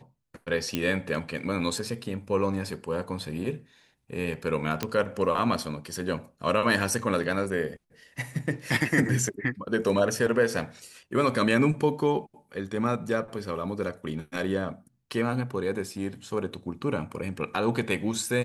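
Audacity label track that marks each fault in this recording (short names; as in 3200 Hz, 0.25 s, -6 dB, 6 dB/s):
0.750000	0.750000	pop -12 dBFS
4.830000	4.830000	pop -11 dBFS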